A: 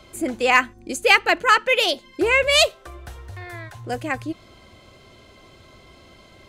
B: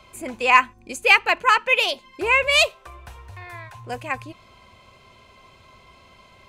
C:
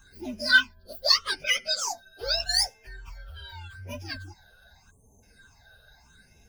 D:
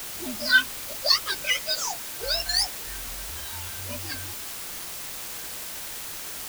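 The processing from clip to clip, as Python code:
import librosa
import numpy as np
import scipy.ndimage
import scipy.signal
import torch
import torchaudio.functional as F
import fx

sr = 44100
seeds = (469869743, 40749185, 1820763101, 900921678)

y1 = fx.graphic_eq_31(x, sr, hz=(315, 1000, 2500), db=(-9, 10, 8))
y1 = F.gain(torch.from_numpy(y1), -4.0).numpy()
y2 = fx.partial_stretch(y1, sr, pct=128)
y2 = fx.spec_erase(y2, sr, start_s=4.9, length_s=0.33, low_hz=1200.0, high_hz=6100.0)
y2 = fx.phaser_stages(y2, sr, stages=8, low_hz=280.0, high_hz=1300.0, hz=0.82, feedback_pct=35)
y3 = fx.quant_dither(y2, sr, seeds[0], bits=6, dither='triangular')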